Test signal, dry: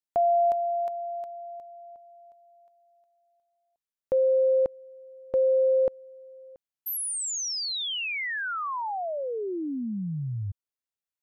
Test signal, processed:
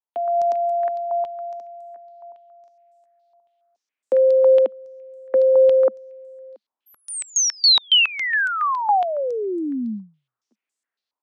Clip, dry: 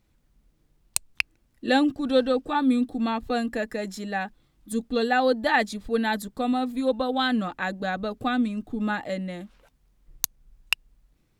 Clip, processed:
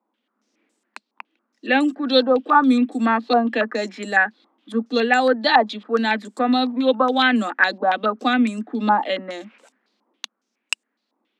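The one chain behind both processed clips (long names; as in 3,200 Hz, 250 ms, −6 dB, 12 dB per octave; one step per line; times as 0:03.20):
Butterworth high-pass 210 Hz 96 dB per octave
automatic gain control gain up to 10 dB
low-pass on a step sequencer 7.2 Hz 960–7,900 Hz
level −3.5 dB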